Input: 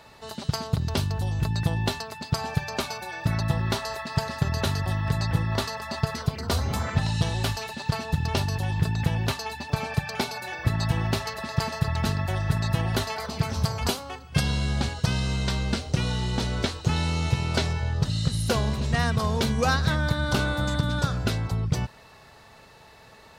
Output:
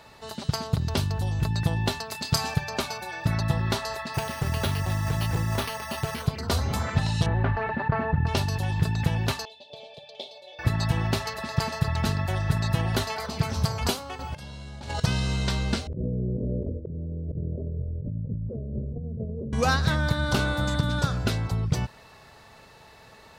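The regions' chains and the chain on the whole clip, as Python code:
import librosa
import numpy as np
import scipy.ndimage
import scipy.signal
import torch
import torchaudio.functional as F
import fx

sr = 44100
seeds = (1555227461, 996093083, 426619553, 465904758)

y = fx.chain(x, sr, fx.high_shelf(hz=2900.0, db=9.5),
    fx.doubler(ms=28.0, db=-10.0), at=(2.1, 2.54))
y = fx.chain(y, sr, fx.resample_bad(factor=6, down='none', up='hold'),
    fx.overload_stage(gain_db=19.5), at=(4.14, 6.27))
y = fx.chain(y, sr, fx.cheby1_lowpass(hz=1800.0, order=3),
    fx.env_flatten(amount_pct=50), at=(7.26, 8.27))
y = fx.chain(y, sr, fx.double_bandpass(hz=1400.0, octaves=2.6),
    fx.room_flutter(wall_m=9.8, rt60_s=0.22), at=(9.45, 10.59))
y = fx.chain(y, sr, fx.over_compress(threshold_db=-37.0, ratio=-1.0),
    fx.small_body(hz=(610.0, 870.0), ring_ms=90, db=14), at=(14.19, 15.0))
y = fx.chain(y, sr, fx.steep_lowpass(hz=600.0, slope=96),
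    fx.hum_notches(base_hz=60, count=4),
    fx.over_compress(threshold_db=-31.0, ratio=-1.0), at=(15.87, 19.53))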